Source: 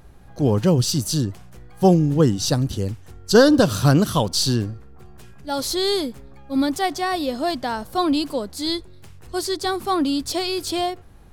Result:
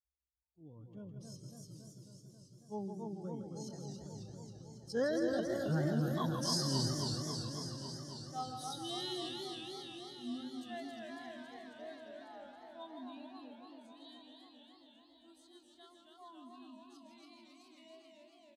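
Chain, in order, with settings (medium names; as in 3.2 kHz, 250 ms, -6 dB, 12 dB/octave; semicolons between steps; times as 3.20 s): expander on every frequency bin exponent 2; Doppler pass-by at 4.45 s, 32 m/s, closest 3.4 m; low-pass 9.8 kHz 12 dB/octave; band-stop 7.4 kHz, Q 8.7; feedback delay 93 ms, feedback 59%, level -6.5 dB; tempo 0.61×; high-pass 58 Hz; modulated delay 273 ms, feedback 76%, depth 150 cents, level -5 dB; trim +3 dB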